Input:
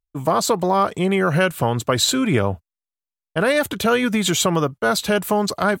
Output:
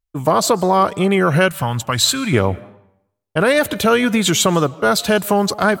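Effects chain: reverb RT60 0.75 s, pre-delay 0.105 s, DRR 21 dB; wow and flutter 48 cents; 1.48–2.33 bell 410 Hz -14 dB 1.2 oct; gain +3.5 dB

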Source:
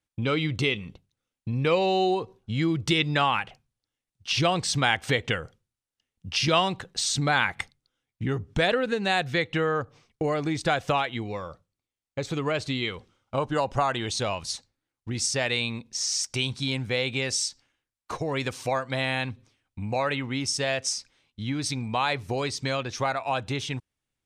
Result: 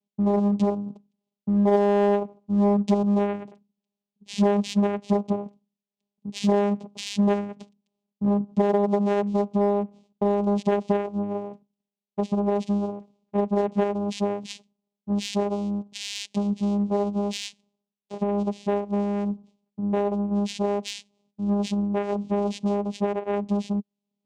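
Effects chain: Chebyshev band-stop 770–4400 Hz, order 5; 20.02–20.64 dynamic EQ 2900 Hz, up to -7 dB, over -46 dBFS, Q 0.79; vocoder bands 4, saw 203 Hz; in parallel at -4 dB: hard clip -25 dBFS, distortion -14 dB; on the sum: gain +2 dB

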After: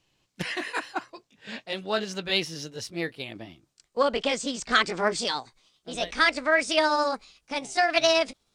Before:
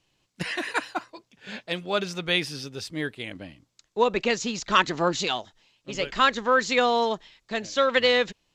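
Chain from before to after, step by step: gliding pitch shift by +5 st starting unshifted; Doppler distortion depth 0.14 ms

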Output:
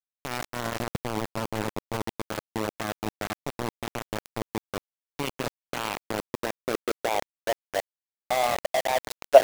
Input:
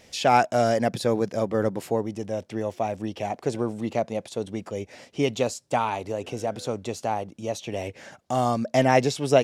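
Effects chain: low-pass opened by the level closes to 2800 Hz, open at -18.5 dBFS; level quantiser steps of 15 dB; FDN reverb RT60 3.2 s, high-frequency decay 0.4×, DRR 11 dB; high-pass sweep 82 Hz -> 640 Hz, 4.84–7.53; on a send: tape echo 0.128 s, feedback 50%, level -10.5 dB, low-pass 1800 Hz; on the sum: sample gate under -23.5 dBFS; gain +1.5 dB

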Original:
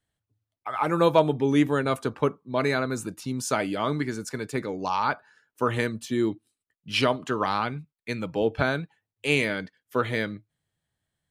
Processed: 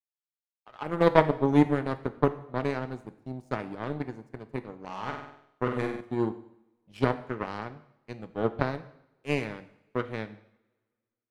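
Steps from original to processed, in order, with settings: tilt shelf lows +7.5 dB, about 1100 Hz; power-law curve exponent 2; 4.84–6.01 flutter echo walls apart 8.2 m, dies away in 0.67 s; two-slope reverb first 0.69 s, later 1.9 s, from -23 dB, DRR 10.5 dB; gain +1 dB

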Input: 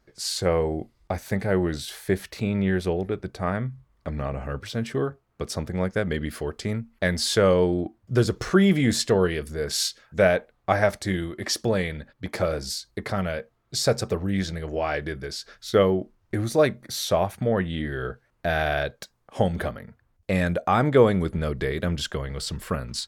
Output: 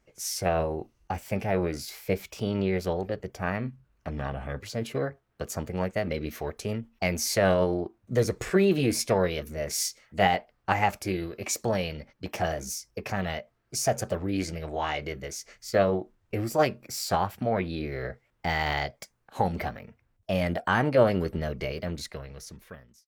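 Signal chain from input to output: ending faded out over 1.78 s; formant shift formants +4 st; gain -3.5 dB

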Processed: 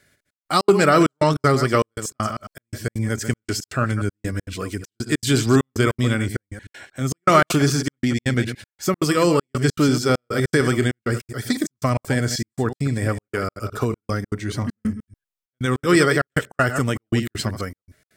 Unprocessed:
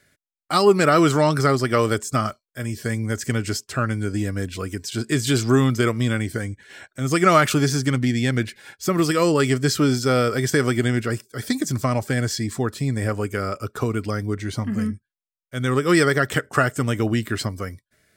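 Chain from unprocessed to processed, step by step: reverse delay 0.103 s, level -9 dB; step gate "xxxx..xx.x" 198 bpm -60 dB; gain +1 dB

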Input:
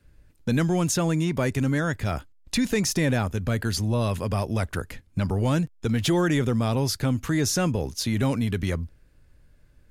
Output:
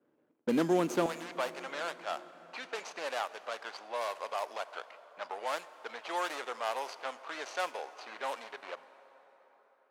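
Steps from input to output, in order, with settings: median filter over 25 samples; HPF 270 Hz 24 dB/oct, from 1.06 s 670 Hz; low-pass opened by the level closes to 2100 Hz, open at -30.5 dBFS; plate-style reverb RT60 4.8 s, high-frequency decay 0.6×, pre-delay 0 ms, DRR 14.5 dB; ending taper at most 540 dB/s

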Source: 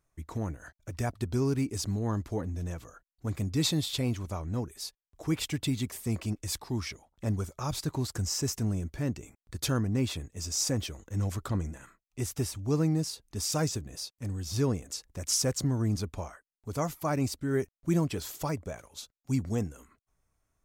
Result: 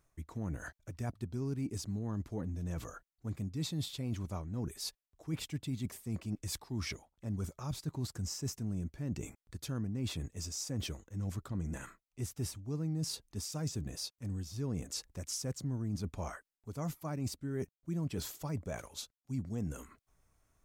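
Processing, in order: dynamic EQ 170 Hz, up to +8 dB, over -42 dBFS, Q 0.85; reverse; compressor 4:1, threshold -42 dBFS, peak gain reduction 21.5 dB; reverse; gain +4 dB

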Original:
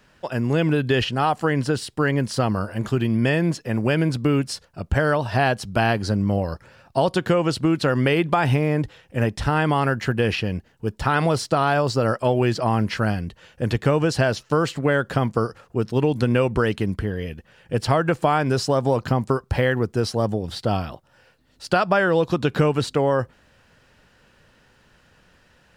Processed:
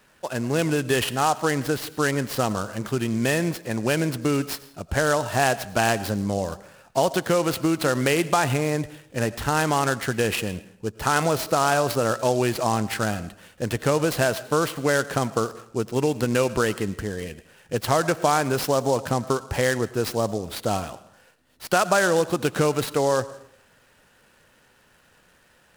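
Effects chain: low shelf 200 Hz -8.5 dB; on a send at -16 dB: reverb RT60 0.65 s, pre-delay 60 ms; on the sum: noise-modulated delay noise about 5900 Hz, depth 0.036 ms

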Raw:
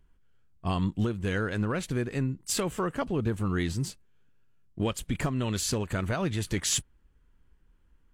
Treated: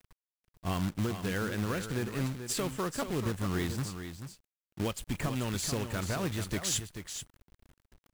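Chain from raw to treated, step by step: companded quantiser 4-bit; echo 0.436 s -9 dB; gain -4.5 dB

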